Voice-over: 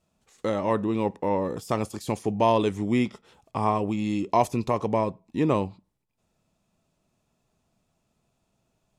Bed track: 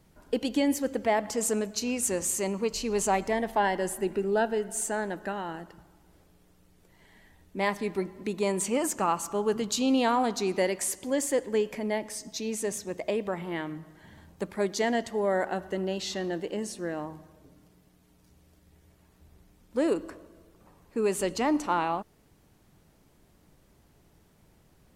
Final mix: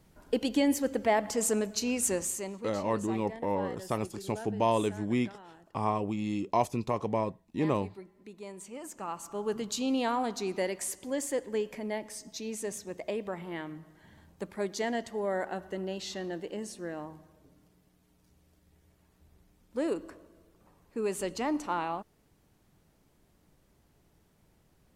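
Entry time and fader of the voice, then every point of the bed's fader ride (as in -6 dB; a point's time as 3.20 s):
2.20 s, -5.5 dB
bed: 2.12 s -0.5 dB
2.83 s -16.5 dB
8.72 s -16.5 dB
9.51 s -5 dB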